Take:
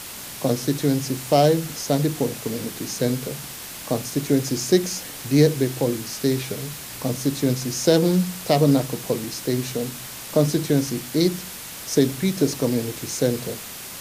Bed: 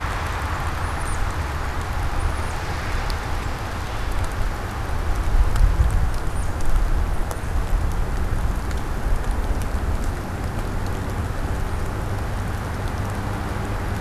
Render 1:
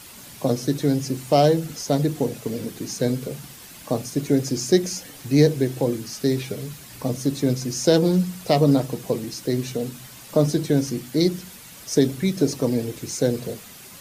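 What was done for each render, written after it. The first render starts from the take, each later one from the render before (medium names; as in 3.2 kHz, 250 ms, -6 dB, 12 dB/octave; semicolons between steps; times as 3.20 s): noise reduction 9 dB, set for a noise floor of -36 dBFS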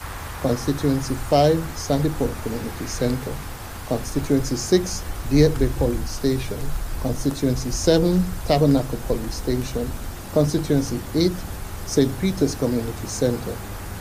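add bed -8 dB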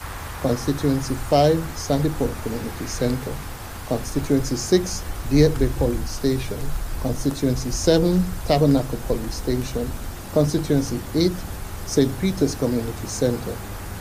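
no audible change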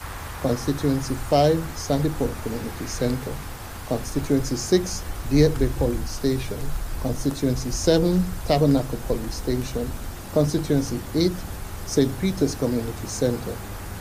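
trim -1.5 dB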